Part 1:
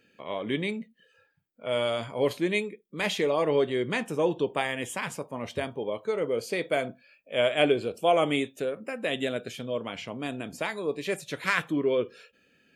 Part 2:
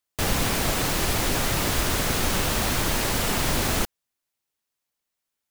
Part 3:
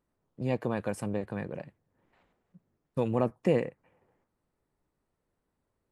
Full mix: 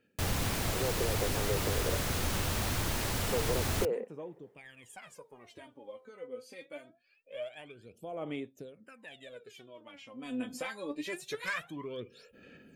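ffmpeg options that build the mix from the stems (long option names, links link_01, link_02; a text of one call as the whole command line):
ffmpeg -i stem1.wav -i stem2.wav -i stem3.wav -filter_complex "[0:a]acompressor=threshold=-44dB:ratio=2,aphaser=in_gain=1:out_gain=1:delay=4:decay=0.79:speed=0.24:type=sinusoidal,volume=-1dB,afade=type=in:start_time=4.41:duration=0.65:silence=0.446684,afade=type=in:start_time=10.13:duration=0.27:silence=0.281838[link_01];[1:a]equalizer=frequency=93:width_type=o:width=0.77:gain=8,volume=-9dB[link_02];[2:a]acompressor=threshold=-36dB:ratio=6,highpass=frequency=430:width_type=q:width=5,adelay=350,volume=-0.5dB[link_03];[link_01][link_02][link_03]amix=inputs=3:normalize=0,asoftclip=type=tanh:threshold=-18.5dB" out.wav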